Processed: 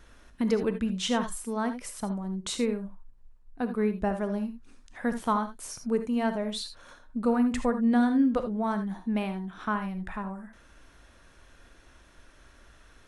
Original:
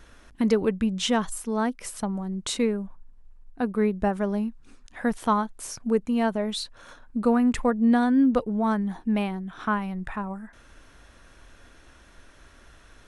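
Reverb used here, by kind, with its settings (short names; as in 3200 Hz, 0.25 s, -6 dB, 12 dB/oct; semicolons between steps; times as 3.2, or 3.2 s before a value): non-linear reverb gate 0.1 s rising, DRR 8.5 dB; gain -4 dB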